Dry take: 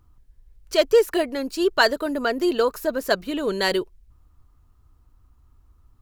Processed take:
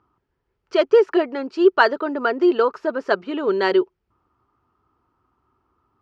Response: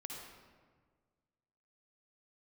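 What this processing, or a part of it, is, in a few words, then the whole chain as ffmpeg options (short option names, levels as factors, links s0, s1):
kitchen radio: -af "highpass=180,equalizer=f=380:t=q:w=4:g=9,equalizer=f=870:t=q:w=4:g=7,equalizer=f=1300:t=q:w=4:g=8,equalizer=f=3900:t=q:w=4:g=-8,lowpass=f=4500:w=0.5412,lowpass=f=4500:w=1.3066,volume=0.891"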